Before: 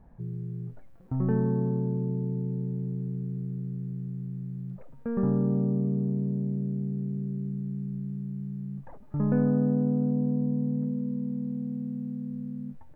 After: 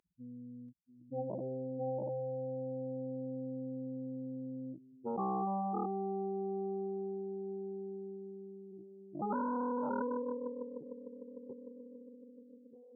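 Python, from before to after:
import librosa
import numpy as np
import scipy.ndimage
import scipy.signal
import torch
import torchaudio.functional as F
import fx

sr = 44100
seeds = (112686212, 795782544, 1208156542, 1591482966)

y = fx.spec_topn(x, sr, count=1)
y = fx.cheby_ripple(y, sr, hz=1100.0, ripple_db=9, at=(8.71, 9.19), fade=0.02)
y = y + 10.0 ** (-6.5 / 20.0) * np.pad(y, (int(685 * sr / 1000.0), 0))[:len(y)]
y = fx.cheby_harmonics(y, sr, harmonics=(4, 6, 7), levels_db=(-15, -6, -44), full_scale_db=-26.0)
y = scipy.signal.sosfilt(scipy.signal.butter(2, 330.0, 'highpass', fs=sr, output='sos'), y)
y = y * librosa.db_to_amplitude(1.0)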